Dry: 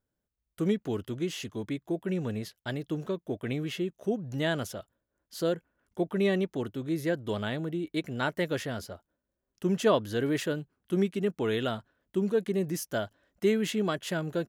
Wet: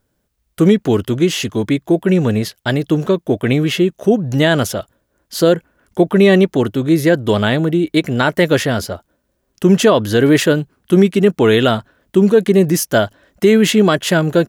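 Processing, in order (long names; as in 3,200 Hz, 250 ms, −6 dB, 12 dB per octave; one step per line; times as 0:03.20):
boost into a limiter +18.5 dB
level −1 dB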